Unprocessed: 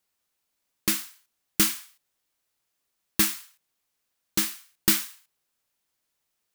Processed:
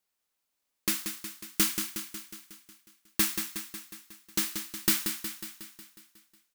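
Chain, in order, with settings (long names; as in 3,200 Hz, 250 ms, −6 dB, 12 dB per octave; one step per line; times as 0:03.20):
parametric band 110 Hz −8.5 dB 0.74 octaves
on a send: repeating echo 182 ms, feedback 60%, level −7.5 dB
on the sum: level −4 dB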